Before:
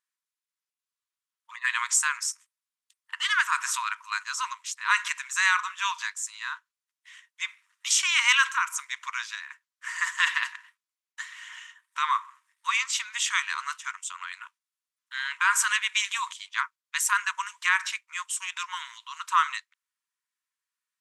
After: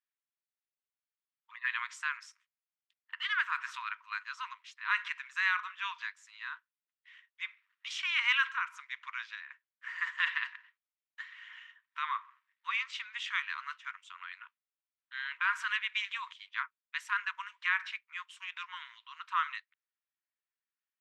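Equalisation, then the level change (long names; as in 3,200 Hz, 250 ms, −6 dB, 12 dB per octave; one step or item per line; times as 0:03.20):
high-pass filter 1,500 Hz 12 dB per octave
high-frequency loss of the air 360 metres
−1.5 dB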